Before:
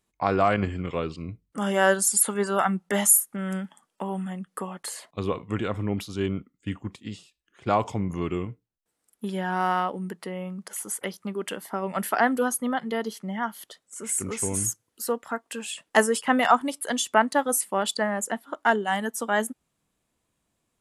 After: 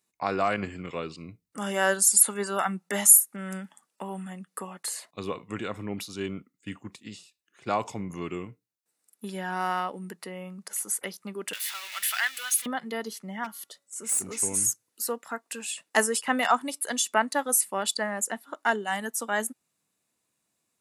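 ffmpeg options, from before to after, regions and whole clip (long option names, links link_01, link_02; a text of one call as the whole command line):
ffmpeg -i in.wav -filter_complex "[0:a]asettb=1/sr,asplit=3[link_01][link_02][link_03];[link_01]atrim=end=11.534[link_04];[link_02]atrim=start=11.53:end=12.66,asetpts=PTS-STARTPTS,afade=type=in:duration=0.004:curve=qsin,afade=type=out:start_time=1.126:duration=0.004:curve=qsin,aeval=exprs='val(0)+0.5*0.0266*sgn(val(0))':channel_layout=same,highpass=frequency=2100:width_type=q:width=1.6,equalizer=frequency=3300:width=3.5:gain=9[link_05];[link_03]atrim=start=12.656[link_06];[link_04][link_05]acrossfade=duration=0.004:curve1=hsin:curve2=qsin[link_07];[link_07][link_06]acrossfade=duration=0.004:curve1=qsin:curve2=hsin,asettb=1/sr,asplit=3[link_08][link_09][link_10];[link_08]atrim=end=13.444[link_11];[link_09]atrim=start=13.44:end=14.4,asetpts=PTS-STARTPTS,afade=type=in:duration=0.004:curve=qsin,afade=type=out:start_time=0.956:duration=0.004:curve=qsin,bandreject=frequency=281.6:width_type=h:width=4,bandreject=frequency=563.2:width_type=h:width=4,bandreject=frequency=844.8:width_type=h:width=4,bandreject=frequency=1126.4:width_type=h:width=4,bandreject=frequency=1408:width_type=h:width=4,bandreject=frequency=1689.6:width_type=h:width=4,bandreject=frequency=1971.2:width_type=h:width=4,bandreject=frequency=2252.8:width_type=h:width=4,bandreject=frequency=2534.4:width_type=h:width=4,aeval=exprs='clip(val(0),-1,0.0501)':channel_layout=same,equalizer=frequency=1800:width_type=o:width=1.5:gain=-3.5[link_12];[link_10]atrim=start=14.396[link_13];[link_11][link_12]acrossfade=duration=0.004:curve1=hsin:curve2=qsin[link_14];[link_14][link_13]acrossfade=duration=0.004:curve1=qsin:curve2=hsin,highpass=130,highshelf=frequency=2100:gain=8.5,bandreject=frequency=3200:width=9.2,volume=-5.5dB" out.wav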